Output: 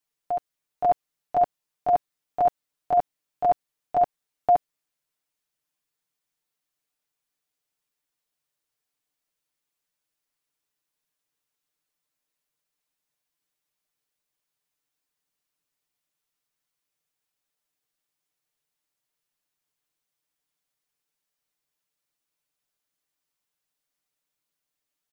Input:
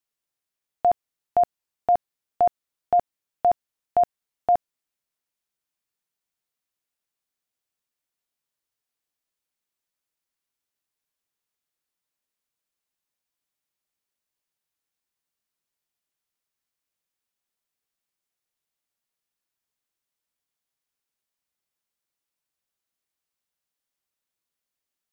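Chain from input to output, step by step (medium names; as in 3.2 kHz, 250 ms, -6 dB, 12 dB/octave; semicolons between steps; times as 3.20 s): comb 6.7 ms; reverse echo 542 ms -8.5 dB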